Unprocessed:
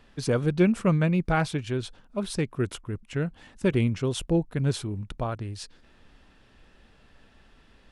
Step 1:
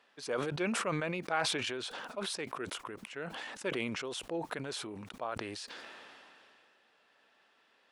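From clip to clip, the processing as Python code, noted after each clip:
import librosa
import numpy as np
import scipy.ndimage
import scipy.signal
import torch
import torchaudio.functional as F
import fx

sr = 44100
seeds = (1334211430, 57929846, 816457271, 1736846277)

y = scipy.signal.sosfilt(scipy.signal.butter(2, 550.0, 'highpass', fs=sr, output='sos'), x)
y = fx.high_shelf(y, sr, hz=7000.0, db=-7.0)
y = fx.sustainer(y, sr, db_per_s=21.0)
y = y * 10.0 ** (-5.5 / 20.0)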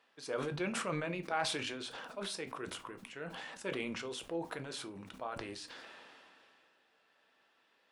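y = fx.room_shoebox(x, sr, seeds[0], volume_m3=150.0, walls='furnished', distance_m=0.66)
y = y * 10.0 ** (-4.0 / 20.0)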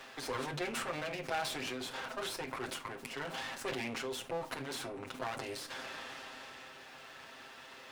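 y = fx.lower_of_two(x, sr, delay_ms=7.6)
y = fx.low_shelf(y, sr, hz=99.0, db=-11.5)
y = fx.band_squash(y, sr, depth_pct=70)
y = y * 10.0 ** (3.5 / 20.0)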